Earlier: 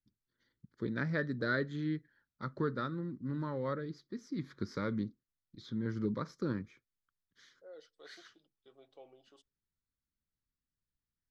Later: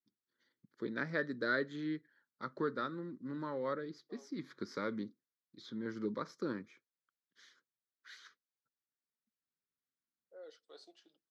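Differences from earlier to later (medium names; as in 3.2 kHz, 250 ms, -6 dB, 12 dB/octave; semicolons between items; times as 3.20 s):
second voice: entry +2.70 s; master: add high-pass 270 Hz 12 dB/octave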